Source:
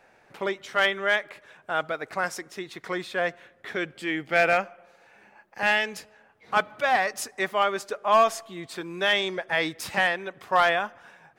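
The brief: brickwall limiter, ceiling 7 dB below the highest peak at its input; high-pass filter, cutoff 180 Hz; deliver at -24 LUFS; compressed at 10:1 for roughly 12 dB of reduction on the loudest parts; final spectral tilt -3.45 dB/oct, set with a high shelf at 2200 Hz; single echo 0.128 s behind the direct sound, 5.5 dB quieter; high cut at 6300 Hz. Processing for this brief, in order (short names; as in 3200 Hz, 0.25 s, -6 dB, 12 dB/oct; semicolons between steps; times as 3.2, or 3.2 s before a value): HPF 180 Hz; LPF 6300 Hz; high shelf 2200 Hz -3.5 dB; compressor 10:1, threshold -28 dBFS; limiter -24.5 dBFS; echo 0.128 s -5.5 dB; gain +11.5 dB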